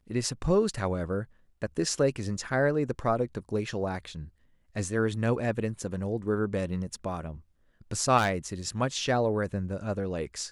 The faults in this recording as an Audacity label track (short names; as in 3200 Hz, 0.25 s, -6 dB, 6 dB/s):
8.170000	8.320000	clipped -20 dBFS